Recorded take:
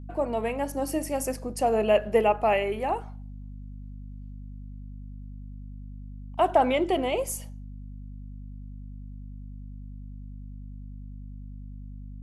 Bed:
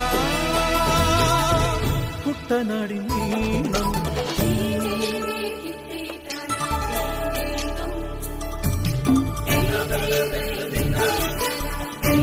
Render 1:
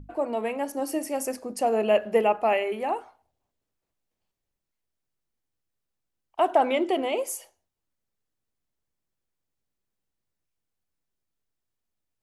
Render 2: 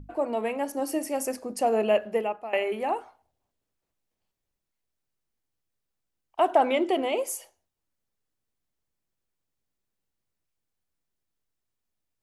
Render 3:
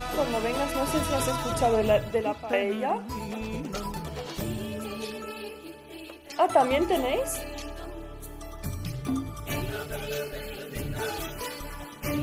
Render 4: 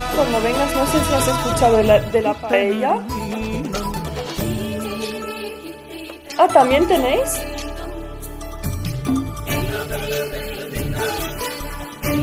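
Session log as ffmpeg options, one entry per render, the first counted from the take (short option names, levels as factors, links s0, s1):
-af "bandreject=f=50:t=h:w=6,bandreject=f=100:t=h:w=6,bandreject=f=150:t=h:w=6,bandreject=f=200:t=h:w=6,bandreject=f=250:t=h:w=6"
-filter_complex "[0:a]asplit=2[s0][s1];[s0]atrim=end=2.53,asetpts=PTS-STARTPTS,afade=t=out:st=1.81:d=0.72:silence=0.125893[s2];[s1]atrim=start=2.53,asetpts=PTS-STARTPTS,afade=t=in:d=0.004:c=hsin:silence=0.125893[s3];[s2][s3]concat=n=2:v=0:a=1"
-filter_complex "[1:a]volume=0.282[s0];[0:a][s0]amix=inputs=2:normalize=0"
-af "volume=2.99,alimiter=limit=0.891:level=0:latency=1"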